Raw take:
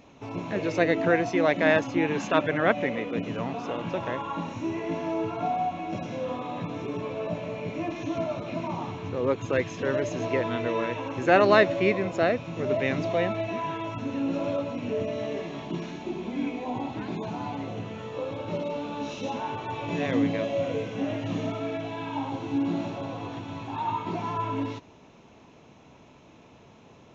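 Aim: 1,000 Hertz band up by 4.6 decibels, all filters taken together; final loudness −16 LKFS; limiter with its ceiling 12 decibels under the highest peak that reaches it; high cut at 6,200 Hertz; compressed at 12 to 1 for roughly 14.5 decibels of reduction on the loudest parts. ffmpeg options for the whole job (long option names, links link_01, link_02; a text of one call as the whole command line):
ffmpeg -i in.wav -af "lowpass=6200,equalizer=frequency=1000:width_type=o:gain=6,acompressor=threshold=-25dB:ratio=12,volume=19dB,alimiter=limit=-7dB:level=0:latency=1" out.wav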